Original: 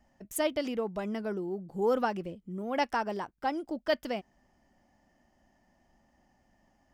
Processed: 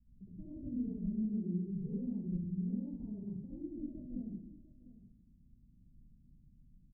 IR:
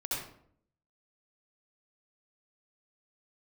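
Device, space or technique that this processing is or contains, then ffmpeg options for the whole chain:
club heard from the street: -filter_complex "[0:a]alimiter=level_in=1dB:limit=-24dB:level=0:latency=1:release=57,volume=-1dB,lowpass=frequency=190:width=0.5412,lowpass=frequency=190:width=1.3066[link_01];[1:a]atrim=start_sample=2205[link_02];[link_01][link_02]afir=irnorm=-1:irlink=0,bandreject=frequency=790:width=25,asplit=2[link_03][link_04];[link_04]adelay=699.7,volume=-17dB,highshelf=frequency=4000:gain=-15.7[link_05];[link_03][link_05]amix=inputs=2:normalize=0,volume=5dB"

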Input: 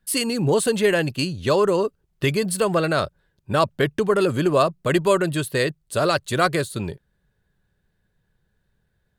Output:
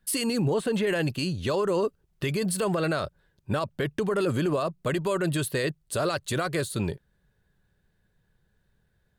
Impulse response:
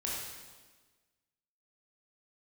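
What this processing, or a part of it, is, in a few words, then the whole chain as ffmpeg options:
stacked limiters: -filter_complex "[0:a]asettb=1/sr,asplit=3[link_01][link_02][link_03];[link_01]atrim=end=0.454[link_04];[link_02]atrim=start=0.45:end=0.87,asetpts=PTS-STARTPTS,afade=type=in:duration=0.004:curve=qsin,afade=type=out:start_time=0.416:duration=0.004:curve=qsin,acrossover=split=3100[link_05][link_06];[link_06]acompressor=threshold=-41dB:ratio=4:attack=1:release=60[link_07];[link_05][link_07]amix=inputs=2:normalize=0[link_08];[link_03]atrim=start=0.866[link_09];[link_04][link_08]acrossfade=duration=0.004:curve1=hsin:curve2=qsin[link_10];[link_10][link_09]acrossfade=duration=0.004:curve1=qsin:curve2=hsin,alimiter=limit=-11dB:level=0:latency=1:release=263,alimiter=limit=-14.5dB:level=0:latency=1:release=67,alimiter=limit=-18.5dB:level=0:latency=1:release=18"

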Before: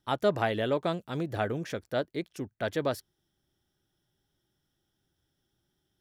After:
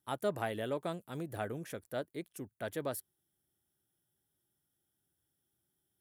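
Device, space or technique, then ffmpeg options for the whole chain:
budget condenser microphone: -af "highpass=66,highshelf=frequency=7300:width_type=q:width=1.5:gain=11.5,volume=-8dB"

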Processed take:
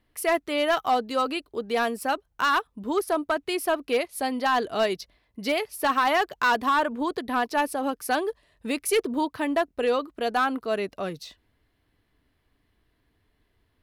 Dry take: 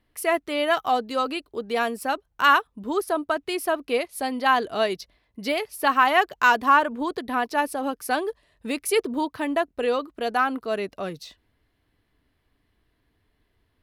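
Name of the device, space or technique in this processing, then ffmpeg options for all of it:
limiter into clipper: -af "alimiter=limit=-12dB:level=0:latency=1:release=12,asoftclip=type=hard:threshold=-16.5dB"

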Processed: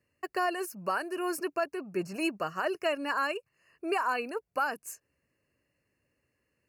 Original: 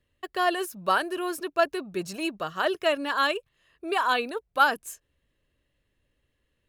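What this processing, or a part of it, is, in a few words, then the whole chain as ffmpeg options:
PA system with an anti-feedback notch: -filter_complex "[0:a]highpass=110,asuperstop=centerf=3500:order=20:qfactor=2.8,alimiter=limit=-19.5dB:level=0:latency=1:release=424,asettb=1/sr,asplit=3[link_01][link_02][link_03];[link_01]atrim=end=1.644[link_04];[link_02]atrim=start=1.64:end=2.16,asetpts=PTS-STARTPTS,afade=type=in:duration=0.004:curve=qsin,afade=type=out:start_time=0.516:duration=0.004:curve=qsin,acrossover=split=2500[link_05][link_06];[link_06]acompressor=threshold=-50dB:ratio=4:attack=1:release=60[link_07];[link_05][link_07]amix=inputs=2:normalize=0[link_08];[link_03]atrim=start=2.156[link_09];[link_04][link_08]acrossfade=duration=0.004:curve1=hsin:curve2=qsin[link_10];[link_10][link_09]acrossfade=duration=0.004:curve1=qsin:curve2=hsin"

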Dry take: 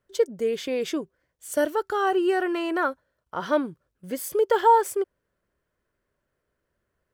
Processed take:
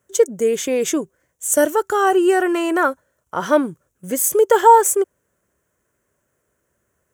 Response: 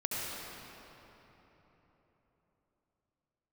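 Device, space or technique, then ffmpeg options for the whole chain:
budget condenser microphone: -af "highpass=65,highshelf=frequency=5600:width_type=q:width=3:gain=6.5,volume=7.5dB"

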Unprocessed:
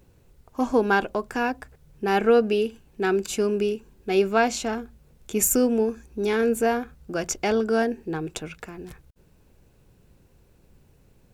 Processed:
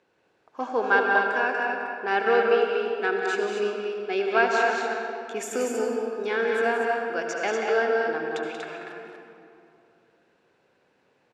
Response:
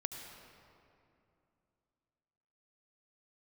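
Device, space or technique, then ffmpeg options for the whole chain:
station announcement: -filter_complex "[0:a]highpass=460,lowpass=3900,equalizer=frequency=1600:width_type=o:width=0.45:gain=5,aecho=1:1:183.7|239.1:0.447|0.562[link_01];[1:a]atrim=start_sample=2205[link_02];[link_01][link_02]afir=irnorm=-1:irlink=0"

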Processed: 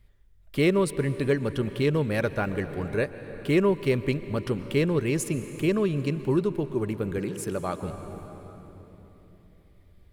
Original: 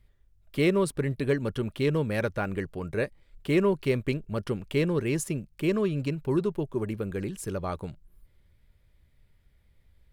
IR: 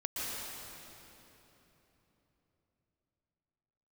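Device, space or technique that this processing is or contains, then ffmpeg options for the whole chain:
ducked reverb: -filter_complex "[0:a]asplit=3[link_01][link_02][link_03];[1:a]atrim=start_sample=2205[link_04];[link_02][link_04]afir=irnorm=-1:irlink=0[link_05];[link_03]apad=whole_len=446385[link_06];[link_05][link_06]sidechaincompress=threshold=-28dB:ratio=10:attack=16:release=1200,volume=-9.5dB[link_07];[link_01][link_07]amix=inputs=2:normalize=0,asettb=1/sr,asplit=3[link_08][link_09][link_10];[link_08]atrim=end=7.184[link_11];[link_09]atrim=start=7.18:end=7.83,asetpts=PTS-STARTPTS,afade=type=in:duration=0.004:curve=qsin,afade=type=out:start_time=0.646:duration=0.004:curve=qsin,highpass=130[link_12];[link_10]atrim=start=7.826[link_13];[link_11][link_12]acrossfade=duration=0.004:curve1=hsin:curve2=qsin[link_14];[link_14][link_13]acrossfade=duration=0.004:curve1=qsin:curve2=hsin,volume=1dB"

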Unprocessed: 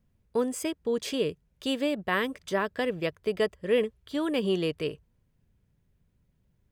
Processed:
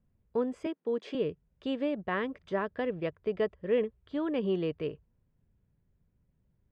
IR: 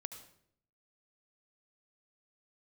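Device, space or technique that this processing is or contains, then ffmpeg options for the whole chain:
phone in a pocket: -filter_complex "[0:a]asettb=1/sr,asplit=3[link_01][link_02][link_03];[link_01]atrim=end=0.664[link_04];[link_02]atrim=start=0.66:end=1.15,asetpts=PTS-STARTPTS,afade=type=in:duration=0.004:curve=qsin,afade=type=out:start_time=0.486:duration=0.004:curve=qsin,highpass=frequency=220:width=0.5412,highpass=frequency=220:width=1.3066[link_05];[link_03]atrim=start=1.146[link_06];[link_04][link_05]acrossfade=duration=0.004:curve1=hsin:curve2=qsin[link_07];[link_07][link_06]acrossfade=duration=0.004:curve1=qsin:curve2=hsin,lowpass=3400,highshelf=frequency=2200:gain=-9.5,volume=-2.5dB"

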